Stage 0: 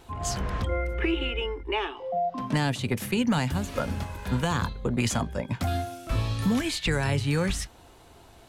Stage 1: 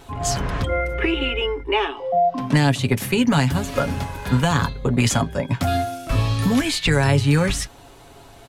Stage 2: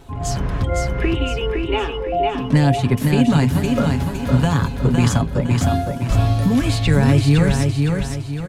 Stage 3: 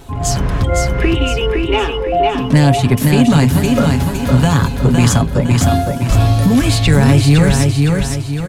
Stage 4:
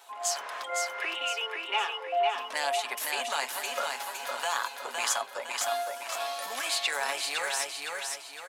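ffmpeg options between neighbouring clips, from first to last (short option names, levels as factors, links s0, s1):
-af "aecho=1:1:7.2:0.43,volume=2.11"
-filter_complex "[0:a]lowshelf=f=440:g=8.5,asplit=2[s0][s1];[s1]aecho=0:1:511|1022|1533|2044|2555:0.631|0.259|0.106|0.0435|0.0178[s2];[s0][s2]amix=inputs=2:normalize=0,volume=0.596"
-af "highshelf=f=5300:g=6,acontrast=50"
-af "highpass=f=700:w=0.5412,highpass=f=700:w=1.3066,volume=0.355"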